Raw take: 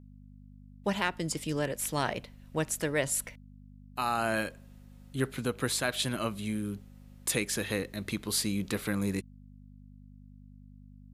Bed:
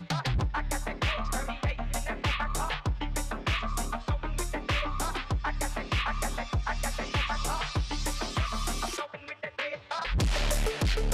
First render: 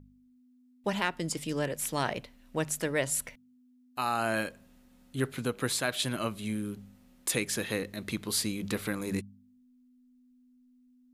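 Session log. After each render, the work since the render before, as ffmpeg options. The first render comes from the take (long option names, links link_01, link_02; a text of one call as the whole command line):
ffmpeg -i in.wav -af "bandreject=frequency=50:width_type=h:width=4,bandreject=frequency=100:width_type=h:width=4,bandreject=frequency=150:width_type=h:width=4,bandreject=frequency=200:width_type=h:width=4" out.wav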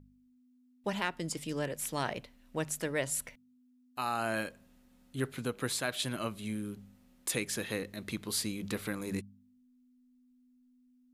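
ffmpeg -i in.wav -af "volume=-3.5dB" out.wav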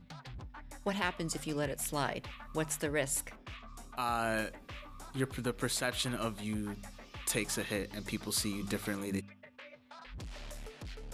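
ffmpeg -i in.wav -i bed.wav -filter_complex "[1:a]volume=-18.5dB[link_01];[0:a][link_01]amix=inputs=2:normalize=0" out.wav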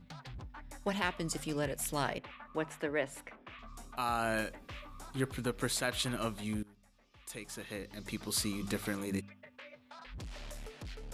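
ffmpeg -i in.wav -filter_complex "[0:a]asettb=1/sr,asplit=3[link_01][link_02][link_03];[link_01]atrim=end=2.184[link_04];[link_02]atrim=start=2.18:end=3.59,asetpts=PTS-STARTPTS,afade=type=in:duration=0.004:curve=qsin,afade=type=out:start_time=1.406:duration=0.004:curve=qsin,acrossover=split=190 3200:gain=0.224 1 0.141[link_05][link_06][link_07];[link_05][link_06][link_07]amix=inputs=3:normalize=0[link_08];[link_03]atrim=start=3.586[link_09];[link_04][link_08]acrossfade=duration=0.004:curve1=hsin:curve2=qsin[link_10];[link_10][link_09]acrossfade=duration=0.004:curve1=qsin:curve2=hsin,asplit=2[link_11][link_12];[link_11]atrim=end=6.63,asetpts=PTS-STARTPTS,afade=type=out:start_time=6.626:duration=0.004:curve=hsin:silence=0.1[link_13];[link_12]atrim=start=6.63,asetpts=PTS-STARTPTS,afade=type=in:duration=1.76:curve=qua:silence=0.1[link_14];[link_13][link_14]concat=n=2:v=0:a=1" out.wav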